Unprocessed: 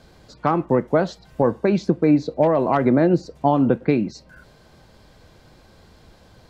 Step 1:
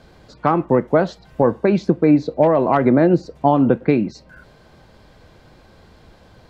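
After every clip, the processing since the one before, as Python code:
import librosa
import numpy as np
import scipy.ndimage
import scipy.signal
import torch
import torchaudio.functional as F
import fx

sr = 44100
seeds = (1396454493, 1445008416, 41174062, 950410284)

y = fx.bass_treble(x, sr, bass_db=-1, treble_db=-6)
y = y * librosa.db_to_amplitude(3.0)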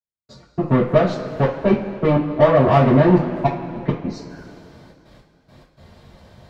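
y = fx.tube_stage(x, sr, drive_db=14.0, bias=0.75)
y = fx.step_gate(y, sr, bpm=104, pattern='..x.xxxxxx.x', floor_db=-60.0, edge_ms=4.5)
y = fx.rev_double_slope(y, sr, seeds[0], early_s=0.25, late_s=2.7, knee_db=-18, drr_db=-9.5)
y = y * librosa.db_to_amplitude(-4.5)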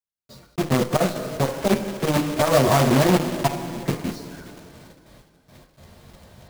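y = fx.block_float(x, sr, bits=3)
y = fx.transformer_sat(y, sr, knee_hz=450.0)
y = y * librosa.db_to_amplitude(-1.5)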